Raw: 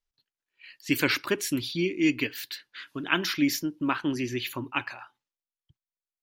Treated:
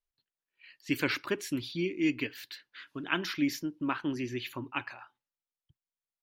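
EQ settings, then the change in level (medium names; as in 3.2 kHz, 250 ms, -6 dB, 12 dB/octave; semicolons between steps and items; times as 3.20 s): treble shelf 5.3 kHz -8 dB; -4.5 dB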